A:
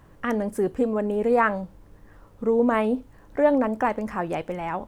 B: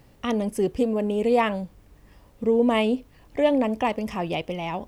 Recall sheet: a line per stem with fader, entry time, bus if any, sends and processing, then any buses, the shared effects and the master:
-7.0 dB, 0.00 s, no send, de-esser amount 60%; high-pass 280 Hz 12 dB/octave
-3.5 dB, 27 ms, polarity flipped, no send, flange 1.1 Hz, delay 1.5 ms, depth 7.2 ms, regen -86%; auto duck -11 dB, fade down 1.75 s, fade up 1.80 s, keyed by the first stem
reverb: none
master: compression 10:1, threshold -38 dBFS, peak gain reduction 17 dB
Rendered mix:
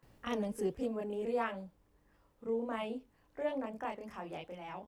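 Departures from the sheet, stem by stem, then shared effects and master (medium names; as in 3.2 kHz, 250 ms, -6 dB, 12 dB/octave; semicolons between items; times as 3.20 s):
stem A -7.0 dB -> -17.5 dB; master: missing compression 10:1, threshold -38 dBFS, peak gain reduction 17 dB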